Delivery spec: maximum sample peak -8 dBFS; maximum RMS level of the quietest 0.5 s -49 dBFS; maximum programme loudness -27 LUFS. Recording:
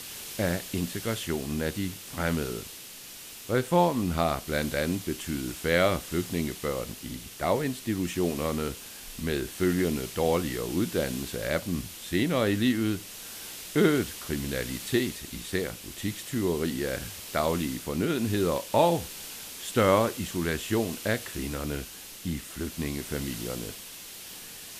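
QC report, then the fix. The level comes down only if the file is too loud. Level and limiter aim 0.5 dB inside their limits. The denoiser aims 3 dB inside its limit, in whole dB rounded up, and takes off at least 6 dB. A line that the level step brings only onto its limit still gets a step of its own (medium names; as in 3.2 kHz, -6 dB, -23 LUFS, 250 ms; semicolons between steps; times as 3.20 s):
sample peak -8.5 dBFS: pass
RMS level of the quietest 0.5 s -44 dBFS: fail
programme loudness -29.0 LUFS: pass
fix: noise reduction 8 dB, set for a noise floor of -44 dBFS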